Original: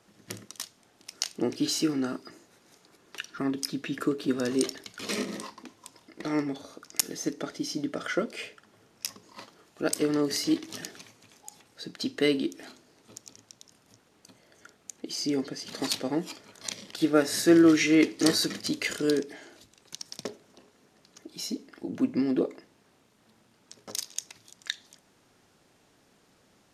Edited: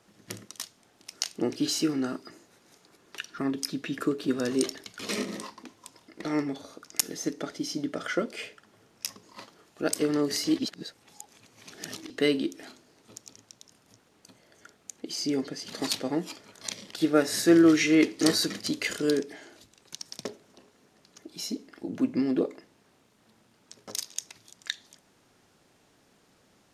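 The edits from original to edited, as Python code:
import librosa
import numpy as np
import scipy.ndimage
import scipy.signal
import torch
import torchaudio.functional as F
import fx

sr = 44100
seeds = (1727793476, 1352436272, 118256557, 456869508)

y = fx.edit(x, sr, fx.reverse_span(start_s=10.59, length_s=1.51), tone=tone)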